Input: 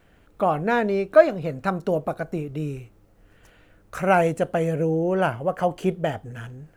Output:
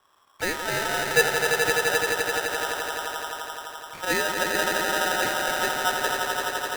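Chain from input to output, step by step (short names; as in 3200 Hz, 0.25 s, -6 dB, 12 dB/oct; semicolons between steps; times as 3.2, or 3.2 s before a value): LPF 1200 Hz 24 dB/oct; swelling echo 85 ms, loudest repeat 5, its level -6.5 dB; polarity switched at an audio rate 1100 Hz; gain -6.5 dB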